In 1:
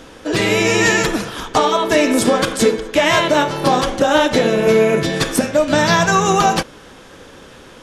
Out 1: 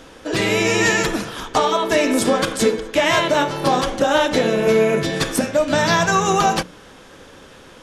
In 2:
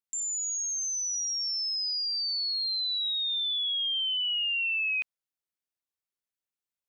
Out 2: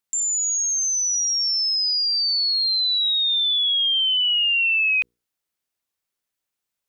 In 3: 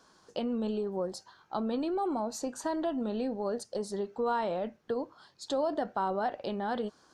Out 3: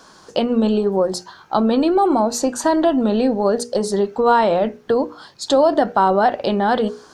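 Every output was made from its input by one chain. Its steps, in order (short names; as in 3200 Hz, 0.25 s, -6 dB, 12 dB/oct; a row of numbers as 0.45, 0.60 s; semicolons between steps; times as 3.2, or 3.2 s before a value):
notches 60/120/180/240/300/360/420/480 Hz; match loudness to -18 LUFS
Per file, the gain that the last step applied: -2.5, +9.0, +16.0 dB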